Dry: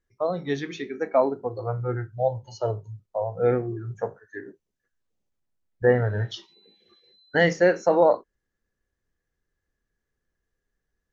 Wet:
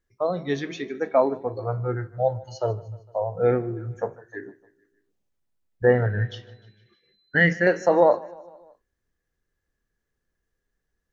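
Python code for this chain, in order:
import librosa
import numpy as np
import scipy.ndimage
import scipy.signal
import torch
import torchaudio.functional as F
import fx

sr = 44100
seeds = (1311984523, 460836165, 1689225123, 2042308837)

y = fx.curve_eq(x, sr, hz=(100.0, 150.0, 920.0, 1800.0, 4100.0), db=(0, 4, -12, 5, -9), at=(6.06, 7.67))
y = fx.echo_feedback(y, sr, ms=152, feedback_pct=58, wet_db=-21.5)
y = y * librosa.db_to_amplitude(1.0)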